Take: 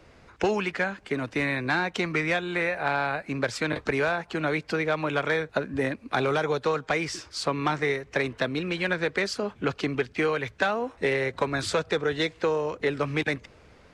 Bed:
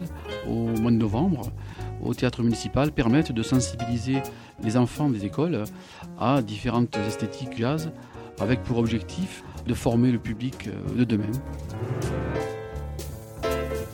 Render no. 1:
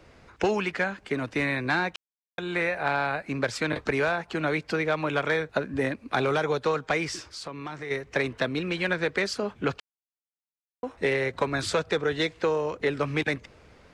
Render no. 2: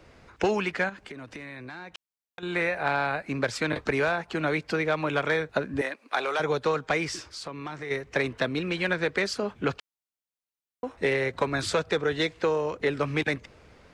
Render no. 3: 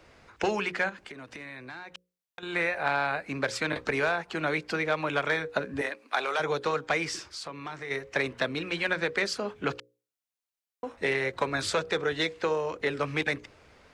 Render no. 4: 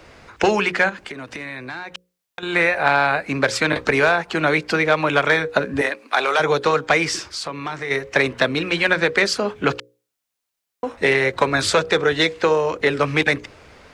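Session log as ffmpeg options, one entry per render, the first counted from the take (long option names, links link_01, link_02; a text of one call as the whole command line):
ffmpeg -i in.wav -filter_complex "[0:a]asplit=3[link_01][link_02][link_03];[link_01]afade=type=out:start_time=7.29:duration=0.02[link_04];[link_02]acompressor=threshold=-38dB:ratio=2.5:attack=3.2:release=140:knee=1:detection=peak,afade=type=in:start_time=7.29:duration=0.02,afade=type=out:start_time=7.9:duration=0.02[link_05];[link_03]afade=type=in:start_time=7.9:duration=0.02[link_06];[link_04][link_05][link_06]amix=inputs=3:normalize=0,asplit=5[link_07][link_08][link_09][link_10][link_11];[link_07]atrim=end=1.96,asetpts=PTS-STARTPTS,afade=type=out:start_time=1.956:duration=0.004:curve=hsin[link_12];[link_08]atrim=start=1.96:end=2.38,asetpts=PTS-STARTPTS,volume=0[link_13];[link_09]atrim=start=2.38:end=9.8,asetpts=PTS-STARTPTS,afade=type=in:duration=0.004:curve=hsin,afade=type=out:start_time=7.416:duration=0.004:curve=hsin[link_14];[link_10]atrim=start=9.8:end=10.83,asetpts=PTS-STARTPTS,volume=0[link_15];[link_11]atrim=start=10.83,asetpts=PTS-STARTPTS,afade=type=in:duration=0.004:curve=hsin[link_16];[link_12][link_13][link_14][link_15][link_16]concat=n=5:v=0:a=1" out.wav
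ffmpeg -i in.wav -filter_complex "[0:a]asettb=1/sr,asplit=3[link_01][link_02][link_03];[link_01]atrim=end=0.894[link_04];[link_02]atrim=start=0.89:end=2.43,asetpts=PTS-STARTPTS,afade=type=in:duration=0.004:curve=qsin,afade=type=out:start_time=1.536:duration=0.004:curve=qsin,acompressor=threshold=-37dB:ratio=10:attack=3.2:release=140:knee=1:detection=peak[link_05];[link_03]atrim=start=2.426[link_06];[link_04][link_05]acrossfade=duration=0.004:curve1=hsin:curve2=qsin[link_07];[link_07][link_06]acrossfade=duration=0.004:curve1=qsin:curve2=hsin,asettb=1/sr,asplit=3[link_08][link_09][link_10];[link_08]atrim=end=5.814[link_11];[link_09]atrim=start=5.81:end=6.4,asetpts=PTS-STARTPTS,afade=type=in:duration=0.004:curve=qsin,afade=type=out:start_time=0.586:duration=0.004:curve=qsin,highpass=580[link_12];[link_10]atrim=start=6.396[link_13];[link_11][link_12]acrossfade=duration=0.004:curve1=hsin:curve2=qsin[link_14];[link_14][link_13]acrossfade=duration=0.004:curve1=qsin:curve2=hsin" out.wav
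ffmpeg -i in.wav -af "lowshelf=frequency=430:gain=-5,bandreject=frequency=60:width_type=h:width=6,bandreject=frequency=120:width_type=h:width=6,bandreject=frequency=180:width_type=h:width=6,bandreject=frequency=240:width_type=h:width=6,bandreject=frequency=300:width_type=h:width=6,bandreject=frequency=360:width_type=h:width=6,bandreject=frequency=420:width_type=h:width=6,bandreject=frequency=480:width_type=h:width=6,bandreject=frequency=540:width_type=h:width=6" out.wav
ffmpeg -i in.wav -af "volume=10.5dB,alimiter=limit=-3dB:level=0:latency=1" out.wav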